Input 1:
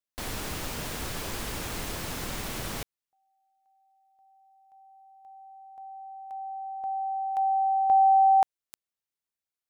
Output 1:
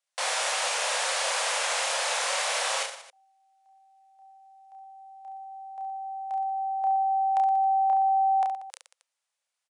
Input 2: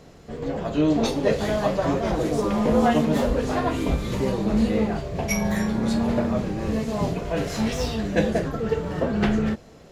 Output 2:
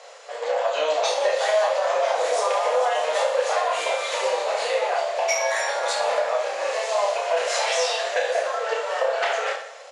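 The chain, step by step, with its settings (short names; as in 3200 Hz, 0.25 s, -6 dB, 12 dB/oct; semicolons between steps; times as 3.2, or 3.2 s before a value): Chebyshev band-pass 520–9900 Hz, order 5; in parallel at +2 dB: limiter -21.5 dBFS; on the sum: compressor 6:1, threshold -22 dBFS; reverse bouncing-ball echo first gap 30 ms, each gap 1.3×, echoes 5; gain +1.5 dB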